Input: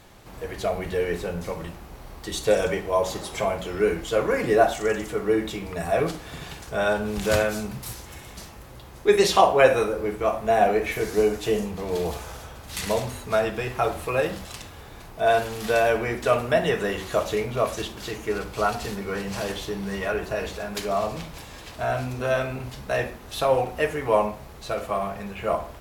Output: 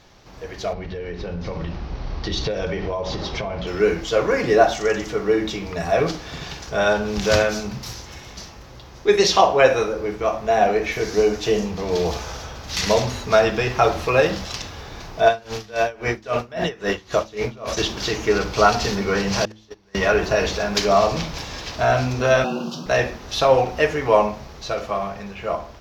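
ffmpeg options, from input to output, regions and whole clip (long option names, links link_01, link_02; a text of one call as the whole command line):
ffmpeg -i in.wav -filter_complex "[0:a]asettb=1/sr,asplit=3[link_01][link_02][link_03];[link_01]atrim=end=0.734[link_04];[link_02]atrim=start=0.73:end=3.67,asetpts=PTS-STARTPTS,afade=type=in:duration=0.004:curve=qsin,afade=type=out:start_time=2.936:duration=0.004:curve=qsin,lowpass=frequency=5000:width=0.5412,lowpass=frequency=5000:width=1.3066,lowshelf=frequency=230:gain=8.5,acompressor=threshold=-27dB:ratio=12:attack=3.2:release=140:knee=1:detection=peak[link_05];[link_03]atrim=start=3.666[link_06];[link_04][link_05]acrossfade=duration=0.004:curve1=hsin:curve2=qsin[link_07];[link_07][link_06]acrossfade=duration=0.004:curve1=qsin:curve2=hsin,asettb=1/sr,asplit=3[link_08][link_09][link_10];[link_08]atrim=end=15.284[link_11];[link_09]atrim=start=15.28:end=17.77,asetpts=PTS-STARTPTS,afade=type=in:duration=0.004:curve=qsin,afade=type=out:start_time=2.486:duration=0.004:curve=qsin,acompressor=threshold=-21dB:ratio=2.5:attack=3.2:release=140:knee=1:detection=peak,aeval=exprs='val(0)*pow(10,-24*(0.5-0.5*cos(2*PI*3.7*n/s))/20)':channel_layout=same[link_12];[link_10]atrim=start=17.766[link_13];[link_11][link_12]acrossfade=duration=0.004:curve1=hsin:curve2=qsin[link_14];[link_14][link_13]acrossfade=duration=0.004:curve1=qsin:curve2=hsin,asettb=1/sr,asplit=3[link_15][link_16][link_17];[link_15]atrim=end=19.454[link_18];[link_16]atrim=start=19.45:end=19.95,asetpts=PTS-STARTPTS,afade=type=in:duration=0.004:curve=qsin,afade=type=out:start_time=0.496:duration=0.004:curve=qsin,agate=range=-30dB:threshold=-26dB:ratio=16:release=100:detection=peak,equalizer=frequency=180:width_type=o:width=0.84:gain=-11.5[link_19];[link_17]atrim=start=19.946[link_20];[link_18][link_19]acrossfade=duration=0.004:curve1=hsin:curve2=qsin[link_21];[link_21][link_20]acrossfade=duration=0.004:curve1=qsin:curve2=hsin,asettb=1/sr,asplit=3[link_22][link_23][link_24];[link_22]atrim=end=22.444[link_25];[link_23]atrim=start=22.44:end=22.86,asetpts=PTS-STARTPTS,afade=type=in:duration=0.004:curve=qsin,afade=type=out:start_time=0.416:duration=0.004:curve=qsin,afreqshift=110,asuperstop=centerf=2000:order=8:qfactor=1.9[link_26];[link_24]atrim=start=22.856[link_27];[link_25][link_26]acrossfade=duration=0.004:curve1=hsin:curve2=qsin[link_28];[link_28][link_27]acrossfade=duration=0.004:curve1=qsin:curve2=hsin,highshelf=frequency=7200:width_type=q:width=3:gain=-9,bandreject=frequency=108:width_type=h:width=4,bandreject=frequency=216:width_type=h:width=4,bandreject=frequency=324:width_type=h:width=4,dynaudnorm=framelen=390:gausssize=9:maxgain=11.5dB,volume=-1dB" out.wav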